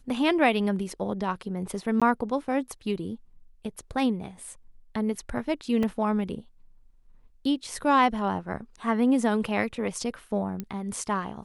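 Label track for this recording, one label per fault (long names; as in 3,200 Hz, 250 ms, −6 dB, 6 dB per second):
2.000000	2.020000	drop-out 16 ms
5.830000	5.830000	drop-out 2.9 ms
10.600000	10.600000	click −19 dBFS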